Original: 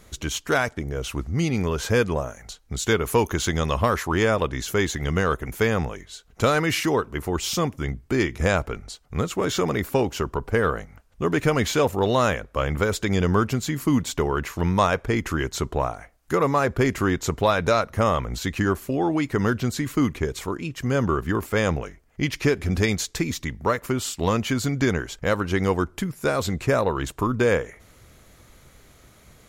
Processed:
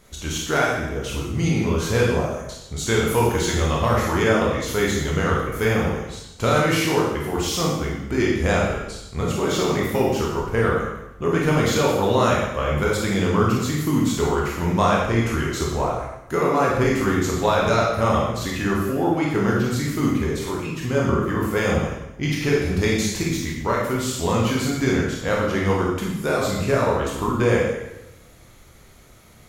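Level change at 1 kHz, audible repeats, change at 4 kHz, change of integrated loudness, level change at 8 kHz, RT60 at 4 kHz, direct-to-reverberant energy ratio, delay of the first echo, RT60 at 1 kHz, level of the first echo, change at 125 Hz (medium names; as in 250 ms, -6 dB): +2.5 dB, no echo, +2.0 dB, +2.5 dB, +2.0 dB, 0.90 s, -4.0 dB, no echo, 0.90 s, no echo, +2.5 dB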